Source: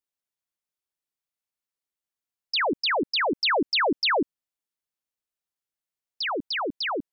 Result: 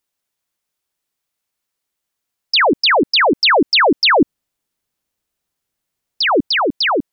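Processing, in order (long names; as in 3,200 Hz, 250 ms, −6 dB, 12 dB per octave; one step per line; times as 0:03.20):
0:04.20–0:06.47: low-shelf EQ 400 Hz +7.5 dB
in parallel at +0.5 dB: brickwall limiter −22 dBFS, peak gain reduction 8.5 dB
on the sum: level +6 dB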